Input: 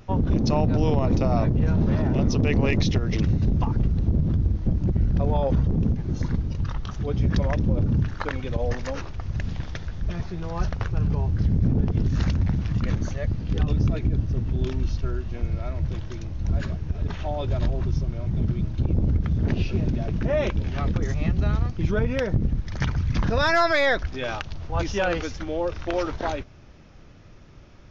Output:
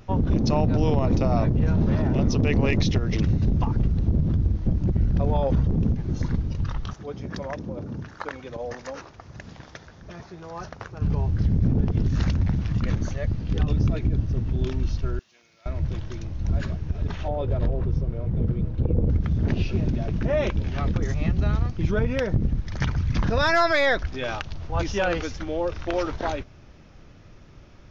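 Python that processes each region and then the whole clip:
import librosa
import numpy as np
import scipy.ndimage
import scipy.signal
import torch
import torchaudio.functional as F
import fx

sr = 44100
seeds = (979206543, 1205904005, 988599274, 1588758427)

y = fx.chain(x, sr, fx.highpass(hz=520.0, slope=6),
    fx.peak_eq(hz=3000.0, db=-6.5, octaves=1.6), at=(6.93, 11.02))
y = fx.chain(y, sr, fx.highpass(hz=150.0, slope=12),
    fx.differentiator(), at=(15.19, 15.66))
y = fx.chain(y, sr, fx.lowpass(hz=1500.0, slope=6),
    fx.peak_eq(hz=480.0, db=12.5, octaves=0.24), at=(17.28, 19.1))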